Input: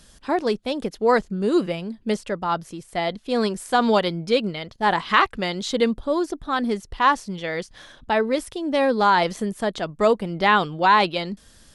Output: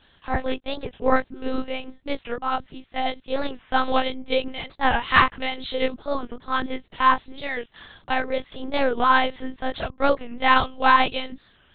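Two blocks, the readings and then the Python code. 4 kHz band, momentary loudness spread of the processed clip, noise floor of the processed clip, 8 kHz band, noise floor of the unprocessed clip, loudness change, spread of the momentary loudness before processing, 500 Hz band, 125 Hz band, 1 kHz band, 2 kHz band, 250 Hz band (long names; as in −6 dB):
−0.5 dB, 13 LU, −59 dBFS, below −40 dB, −52 dBFS, −1.5 dB, 10 LU, −4.5 dB, −6.0 dB, −0.5 dB, +1.0 dB, −5.5 dB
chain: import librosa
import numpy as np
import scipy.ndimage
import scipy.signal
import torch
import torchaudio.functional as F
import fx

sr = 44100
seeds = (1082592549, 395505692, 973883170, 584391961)

y = scipy.signal.sosfilt(scipy.signal.butter(2, 55.0, 'highpass', fs=sr, output='sos'), x)
y = fx.low_shelf(y, sr, hz=410.0, db=-10.0)
y = fx.doubler(y, sr, ms=24.0, db=-2.0)
y = fx.lpc_monotone(y, sr, seeds[0], pitch_hz=260.0, order=8)
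y = fx.record_warp(y, sr, rpm=45.0, depth_cents=160.0)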